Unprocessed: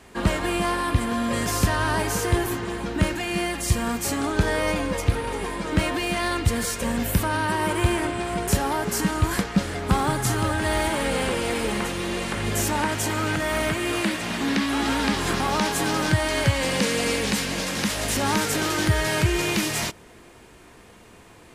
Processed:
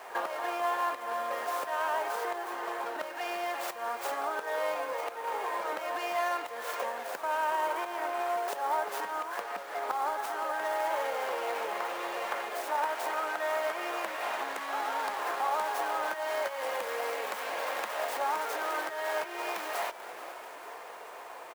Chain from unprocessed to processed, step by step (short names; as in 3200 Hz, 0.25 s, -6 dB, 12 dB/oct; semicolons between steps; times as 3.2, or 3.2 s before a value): tracing distortion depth 0.4 ms; high shelf 2300 Hz -8.5 dB; on a send: frequency-shifting echo 0.438 s, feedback 62%, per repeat -130 Hz, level -23.5 dB; on the sum: compressor 6:1, threshold -35 dBFS, peak gain reduction 19 dB; HPF 650 Hz 24 dB/oct; tilt shelf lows +6.5 dB, about 1300 Hz; pre-echo 49 ms -16 dB; companded quantiser 6-bit; gain +9 dB